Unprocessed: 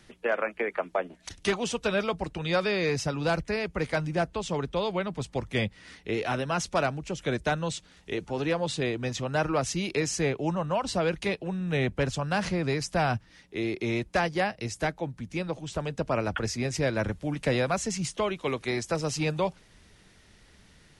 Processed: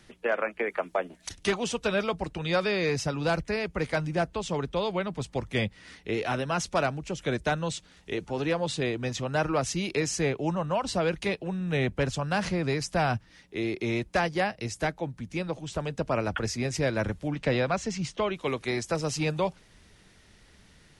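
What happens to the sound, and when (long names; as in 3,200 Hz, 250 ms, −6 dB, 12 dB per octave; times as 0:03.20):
0:00.66–0:01.35: high-shelf EQ 6,700 Hz +8.5 dB
0:17.28–0:18.34: low-pass filter 5,200 Hz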